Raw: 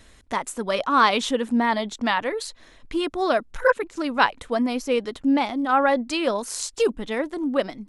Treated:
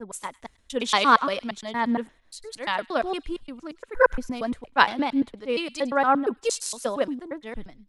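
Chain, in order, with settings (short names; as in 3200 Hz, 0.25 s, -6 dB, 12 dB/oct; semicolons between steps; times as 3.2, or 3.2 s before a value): slices in reverse order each 0.116 s, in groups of 6; thin delay 0.103 s, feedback 41%, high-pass 2300 Hz, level -15 dB; three-band expander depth 100%; gain -3.5 dB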